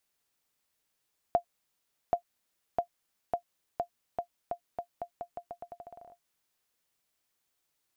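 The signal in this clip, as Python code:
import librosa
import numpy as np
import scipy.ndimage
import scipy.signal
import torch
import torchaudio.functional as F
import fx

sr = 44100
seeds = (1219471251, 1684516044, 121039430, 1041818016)

y = fx.bouncing_ball(sr, first_gap_s=0.78, ratio=0.84, hz=697.0, decay_ms=94.0, level_db=-14.5)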